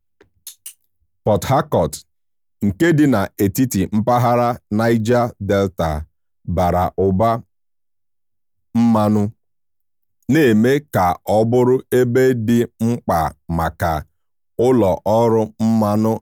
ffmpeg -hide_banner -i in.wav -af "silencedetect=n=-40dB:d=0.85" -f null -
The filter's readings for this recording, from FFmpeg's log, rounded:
silence_start: 7.41
silence_end: 8.75 | silence_duration: 1.34
silence_start: 9.31
silence_end: 10.29 | silence_duration: 0.98